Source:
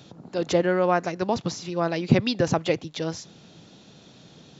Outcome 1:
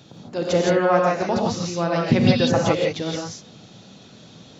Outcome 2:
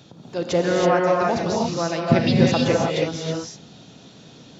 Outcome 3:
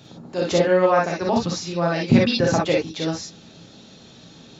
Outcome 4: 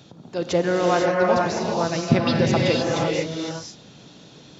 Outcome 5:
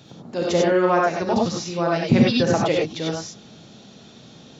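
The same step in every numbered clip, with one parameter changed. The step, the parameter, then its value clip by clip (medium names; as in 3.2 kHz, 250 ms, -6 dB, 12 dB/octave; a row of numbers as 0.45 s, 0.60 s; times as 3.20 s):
gated-style reverb, gate: 190 ms, 350 ms, 80 ms, 530 ms, 120 ms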